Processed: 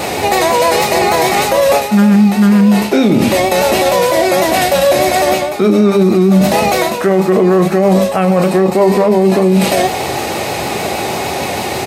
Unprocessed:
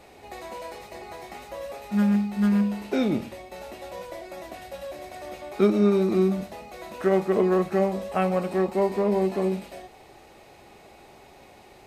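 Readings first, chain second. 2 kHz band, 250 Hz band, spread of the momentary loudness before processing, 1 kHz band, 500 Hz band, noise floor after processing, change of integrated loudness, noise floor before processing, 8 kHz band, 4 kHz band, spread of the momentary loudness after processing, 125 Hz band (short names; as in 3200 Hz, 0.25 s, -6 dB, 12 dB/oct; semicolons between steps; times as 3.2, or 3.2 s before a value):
+21.0 dB, +14.0 dB, 18 LU, +20.0 dB, +15.0 dB, -19 dBFS, +12.5 dB, -51 dBFS, n/a, +25.0 dB, 8 LU, +15.0 dB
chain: HPF 83 Hz 24 dB/oct; tone controls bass +2 dB, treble +4 dB; notches 50/100/150/200/250/300/350/400 Hz; reverse; compressor 5:1, threshold -37 dBFS, peak gain reduction 19 dB; reverse; vibrato 6.4 Hz 40 cents; doubler 37 ms -13.5 dB; maximiser +33.5 dB; gain -1.5 dB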